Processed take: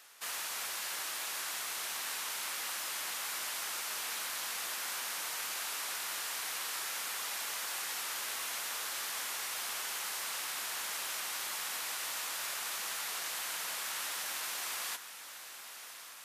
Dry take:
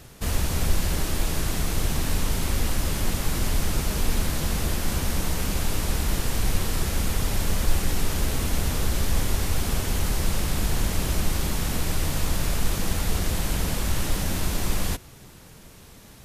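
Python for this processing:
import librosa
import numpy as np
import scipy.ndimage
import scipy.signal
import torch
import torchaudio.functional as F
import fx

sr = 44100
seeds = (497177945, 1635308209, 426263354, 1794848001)

p1 = scipy.signal.sosfilt(scipy.signal.cheby1(2, 1.0, 1200.0, 'highpass', fs=sr, output='sos'), x)
p2 = p1 + fx.echo_diffused(p1, sr, ms=1108, feedback_pct=62, wet_db=-12.0, dry=0)
y = p2 * librosa.db_to_amplitude(-4.5)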